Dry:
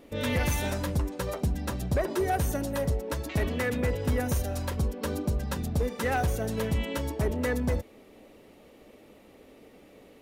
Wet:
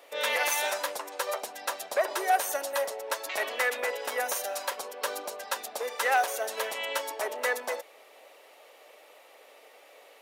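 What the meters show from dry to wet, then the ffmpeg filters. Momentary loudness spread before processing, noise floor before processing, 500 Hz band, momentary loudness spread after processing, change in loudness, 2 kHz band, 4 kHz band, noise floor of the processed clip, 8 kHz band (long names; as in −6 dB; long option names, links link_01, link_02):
4 LU, −55 dBFS, −0.5 dB, 9 LU, −0.5 dB, +5.5 dB, +5.5 dB, −55 dBFS, +5.5 dB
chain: -af "highpass=frequency=590:width=0.5412,highpass=frequency=590:width=1.3066,volume=5.5dB"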